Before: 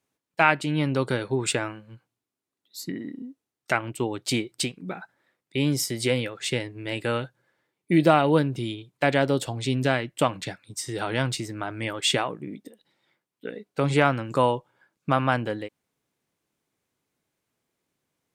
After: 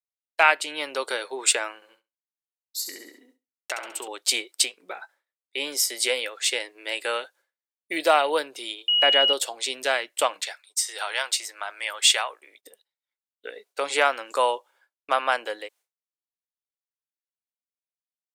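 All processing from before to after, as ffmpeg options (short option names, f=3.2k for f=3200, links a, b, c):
-filter_complex "[0:a]asettb=1/sr,asplit=3[a][b][c];[a]atrim=end=1.754[d];[b]atrim=start=1.75:end=4.08,asetpts=PTS-STARTPTS,afade=t=in:d=0.004:c=qsin,afade=t=out:st=2.326:d=0.004:c=qsin,agate=range=-33dB:threshold=-53dB:ratio=3:release=100:detection=peak,acompressor=threshold=-27dB:ratio=6:attack=3.2:release=140:knee=1:detection=peak,aecho=1:1:68|136|204|272|340:0.422|0.198|0.0932|0.0438|0.0206,atrim=end_sample=102753[e];[c]atrim=start=4.076[f];[d][e]acrossfade=d=0.004:c1=hsin:c2=qsin[g];[g][f]acrossfade=d=0.004:c1=qsin:c2=hsin,asettb=1/sr,asplit=3[h][i][j];[h]atrim=end=4.654[k];[i]atrim=start=4.65:end=5.9,asetpts=PTS-STARTPTS,afade=t=in:d=0.004:c=qsin,afade=t=out:st=1.246:d=0.004:c=qsin,highshelf=f=3.2k:g=-3.5,asplit=2[l][m];[m]adelay=18,volume=-13.5dB[n];[l][n]amix=inputs=2:normalize=0,atrim=end_sample=55125[o];[j]atrim=start=5.896[p];[k][o]acrossfade=d=0.004:c1=hsin:c2=qsin[q];[q][p]acrossfade=d=0.004:c1=qsin:c2=hsin,asettb=1/sr,asplit=3[r][s][t];[r]atrim=end=8.884[u];[s]atrim=start=8.88:end=9.33,asetpts=PTS-STARTPTS,afade=t=in:d=0.004:c=qsin,afade=t=out:st=0.446:d=0.004:c=qsin,bass=f=250:g=8,treble=f=4k:g=-11,aeval=exprs='val(0)+0.0794*sin(2*PI*2900*n/s)':c=same[v];[t]atrim=start=9.326[w];[u][v]acrossfade=d=0.004:c1=hsin:c2=qsin[x];[x][w]acrossfade=d=0.004:c1=qsin:c2=hsin,asettb=1/sr,asplit=3[y][z][aa];[y]atrim=end=10.464[ab];[z]atrim=start=10.46:end=12.63,asetpts=PTS-STARTPTS,afade=t=in:d=0.004:c=qsin,afade=t=out:st=2.166:d=0.004:c=qsin,highpass=710,agate=range=-33dB:threshold=-58dB:ratio=3:release=100:detection=peak[ac];[aa]atrim=start=12.626[ad];[ab][ac]acrossfade=d=0.004:c1=hsin:c2=qsin[ae];[ae][ad]acrossfade=d=0.004:c1=qsin:c2=hsin,highpass=f=470:w=0.5412,highpass=f=470:w=1.3066,agate=range=-33dB:threshold=-53dB:ratio=3:detection=peak,highshelf=f=3k:g=9.5"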